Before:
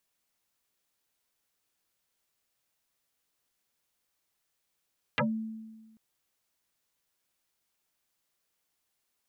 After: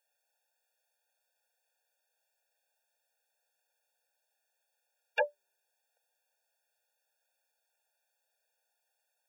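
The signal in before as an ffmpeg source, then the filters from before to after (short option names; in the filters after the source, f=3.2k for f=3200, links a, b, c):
-f lavfi -i "aevalsrc='0.075*pow(10,-3*t/1.37)*sin(2*PI*221*t+10*pow(10,-3*t/0.15)*sin(2*PI*1.65*221*t))':d=0.79:s=44100"
-filter_complex "[0:a]acrossover=split=250|480|1700[a][b][c][d];[c]acontrast=75[e];[a][b][e][d]amix=inputs=4:normalize=0,afftfilt=real='re*eq(mod(floor(b*sr/1024/470),2),1)':imag='im*eq(mod(floor(b*sr/1024/470),2),1)':win_size=1024:overlap=0.75"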